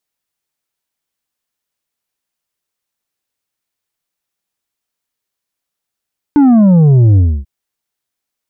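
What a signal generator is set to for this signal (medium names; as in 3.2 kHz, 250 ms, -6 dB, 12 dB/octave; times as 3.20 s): sub drop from 300 Hz, over 1.09 s, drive 6 dB, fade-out 0.28 s, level -5 dB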